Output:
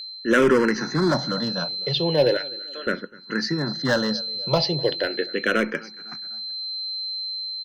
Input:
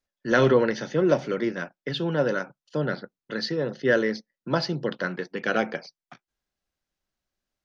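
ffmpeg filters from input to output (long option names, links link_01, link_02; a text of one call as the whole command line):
ffmpeg -i in.wav -filter_complex "[0:a]asettb=1/sr,asplit=3[link_01][link_02][link_03];[link_01]atrim=end=2.374[link_04];[link_02]atrim=start=2.37:end=2.87,asetpts=PTS-STARTPTS,afade=type=in:duration=0.004:curve=qsin,afade=type=out:start_time=0.496:duration=0.004:curve=qsin,highpass=1200[link_05];[link_03]atrim=start=2.866[link_06];[link_04][link_05]acrossfade=duration=0.004:curve1=hsin:curve2=qsin[link_07];[link_07][link_06]acrossfade=duration=0.004:curve1=qsin:curve2=hsin,aecho=1:1:251|502|753:0.0708|0.034|0.0163,aeval=exprs='val(0)+0.02*sin(2*PI*4100*n/s)':channel_layout=same,volume=17dB,asoftclip=hard,volume=-17dB,asplit=2[link_08][link_09];[link_09]afreqshift=-0.38[link_10];[link_08][link_10]amix=inputs=2:normalize=1,volume=7dB" out.wav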